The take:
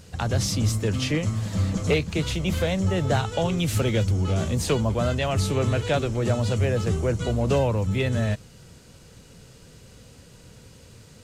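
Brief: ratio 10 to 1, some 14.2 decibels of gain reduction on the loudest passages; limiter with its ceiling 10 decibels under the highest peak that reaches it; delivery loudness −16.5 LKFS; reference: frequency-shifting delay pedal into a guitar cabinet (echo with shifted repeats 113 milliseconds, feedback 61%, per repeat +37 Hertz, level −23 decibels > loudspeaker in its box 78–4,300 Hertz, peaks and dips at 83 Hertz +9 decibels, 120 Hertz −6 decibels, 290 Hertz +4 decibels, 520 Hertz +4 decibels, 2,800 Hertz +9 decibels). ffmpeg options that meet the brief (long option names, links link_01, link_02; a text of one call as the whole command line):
ffmpeg -i in.wav -filter_complex "[0:a]acompressor=threshold=-33dB:ratio=10,alimiter=level_in=8dB:limit=-24dB:level=0:latency=1,volume=-8dB,asplit=5[link_01][link_02][link_03][link_04][link_05];[link_02]adelay=113,afreqshift=37,volume=-23dB[link_06];[link_03]adelay=226,afreqshift=74,volume=-27.3dB[link_07];[link_04]adelay=339,afreqshift=111,volume=-31.6dB[link_08];[link_05]adelay=452,afreqshift=148,volume=-35.9dB[link_09];[link_01][link_06][link_07][link_08][link_09]amix=inputs=5:normalize=0,highpass=78,equalizer=frequency=83:width_type=q:width=4:gain=9,equalizer=frequency=120:width_type=q:width=4:gain=-6,equalizer=frequency=290:width_type=q:width=4:gain=4,equalizer=frequency=520:width_type=q:width=4:gain=4,equalizer=frequency=2800:width_type=q:width=4:gain=9,lowpass=frequency=4300:width=0.5412,lowpass=frequency=4300:width=1.3066,volume=23.5dB" out.wav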